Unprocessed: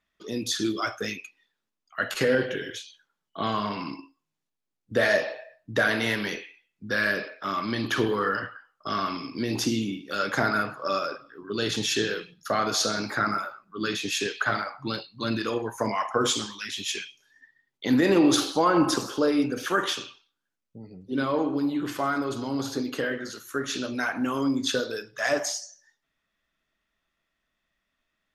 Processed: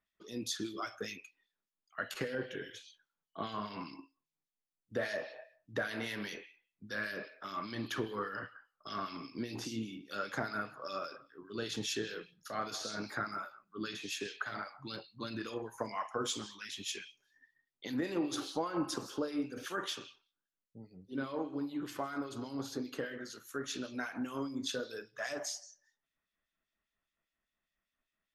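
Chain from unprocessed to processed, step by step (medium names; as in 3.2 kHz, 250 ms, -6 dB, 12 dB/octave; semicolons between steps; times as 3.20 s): compression 2:1, threshold -26 dBFS, peak gain reduction 6 dB; harmonic tremolo 5 Hz, depth 70%, crossover 2.2 kHz; trim -7 dB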